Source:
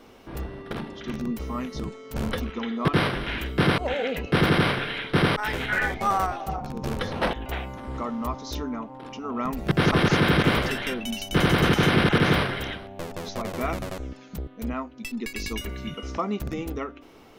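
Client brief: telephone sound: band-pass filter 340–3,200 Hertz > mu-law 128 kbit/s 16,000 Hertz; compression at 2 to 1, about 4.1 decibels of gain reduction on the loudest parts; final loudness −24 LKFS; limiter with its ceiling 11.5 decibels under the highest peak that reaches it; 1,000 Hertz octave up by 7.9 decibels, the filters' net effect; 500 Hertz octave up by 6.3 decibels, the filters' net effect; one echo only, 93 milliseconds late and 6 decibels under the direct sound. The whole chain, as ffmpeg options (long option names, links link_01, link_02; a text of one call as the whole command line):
ffmpeg -i in.wav -af "equalizer=frequency=500:width_type=o:gain=7,equalizer=frequency=1000:width_type=o:gain=8.5,acompressor=threshold=-19dB:ratio=2,alimiter=limit=-19.5dB:level=0:latency=1,highpass=340,lowpass=3200,aecho=1:1:93:0.501,volume=6dB" -ar 16000 -c:a pcm_mulaw out.wav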